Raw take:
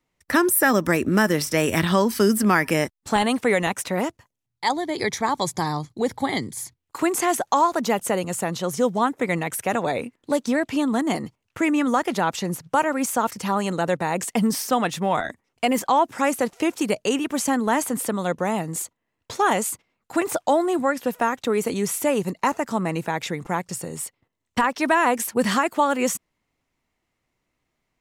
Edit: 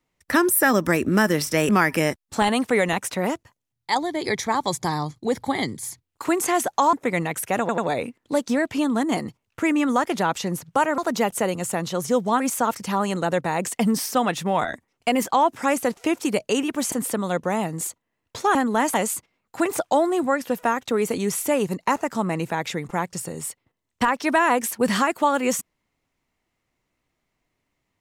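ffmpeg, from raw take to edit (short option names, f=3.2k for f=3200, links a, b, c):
-filter_complex "[0:a]asplit=10[a][b][c][d][e][f][g][h][i][j];[a]atrim=end=1.692[k];[b]atrim=start=2.428:end=7.672[l];[c]atrim=start=9.088:end=9.852[m];[d]atrim=start=9.758:end=9.852[n];[e]atrim=start=9.758:end=12.962[o];[f]atrim=start=7.668:end=9.092[p];[g]atrim=start=12.958:end=17.482[q];[h]atrim=start=17.868:end=19.502[r];[i]atrim=start=17.478:end=17.872[s];[j]atrim=start=19.498[t];[k][l]acrossfade=d=0.004:c1=hsin:c2=hsin[u];[u][m]acrossfade=d=0.004:c1=hsin:c2=hsin[v];[v][n]acrossfade=d=0.004:c1=hsin:c2=hsin[w];[w][o]acrossfade=d=0.004:c1=hsin:c2=hsin[x];[x][p]acrossfade=d=0.004:c1=hsin:c2=hsin[y];[y][q]acrossfade=d=0.004:c1=hsin:c2=hsin[z];[z][r]acrossfade=d=0.004:c1=hsin:c2=hsin[aa];[aa][s]acrossfade=d=0.004:c1=hsin:c2=hsin[ab];[ab][t]acrossfade=d=0.004:c1=hsin:c2=hsin"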